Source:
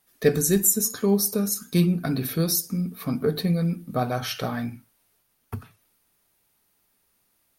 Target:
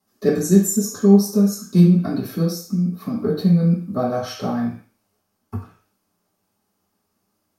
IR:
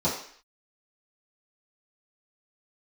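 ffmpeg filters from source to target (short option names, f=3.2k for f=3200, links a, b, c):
-filter_complex "[0:a]asettb=1/sr,asplit=3[a][b][c];[a]atrim=end=2.424[d];[b]atrim=start=2.42:end=3.16,asetpts=PTS-STARTPTS,afade=t=in:d=0.004:c=qsin,afade=t=out:st=0.736:d=0.004:c=qsin,acompressor=threshold=-25dB:ratio=6[e];[c]atrim=start=3.156[f];[d][e]acrossfade=d=0.004:c1=hsin:c2=qsin[g];[g][f]acrossfade=d=0.004:c1=qsin:c2=hsin[h];[1:a]atrim=start_sample=2205,asetrate=52920,aresample=44100[i];[h][i]afir=irnorm=-1:irlink=0,volume=-10.5dB"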